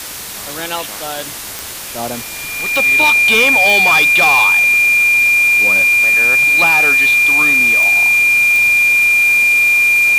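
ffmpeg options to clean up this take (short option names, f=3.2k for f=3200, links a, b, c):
-af "adeclick=t=4,bandreject=f=2.4k:w=30,afwtdn=0.05"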